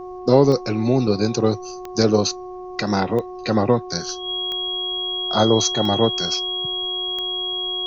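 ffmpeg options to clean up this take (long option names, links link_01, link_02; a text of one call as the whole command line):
ffmpeg -i in.wav -af "adeclick=threshold=4,bandreject=frequency=365.6:width_type=h:width=4,bandreject=frequency=731.2:width_type=h:width=4,bandreject=frequency=1096.8:width_type=h:width=4,bandreject=frequency=3300:width=30,agate=range=-21dB:threshold=-26dB" out.wav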